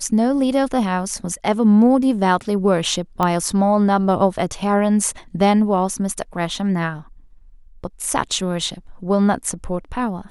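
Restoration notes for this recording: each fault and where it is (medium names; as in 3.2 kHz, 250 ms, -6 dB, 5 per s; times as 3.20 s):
3.23 s: pop -7 dBFS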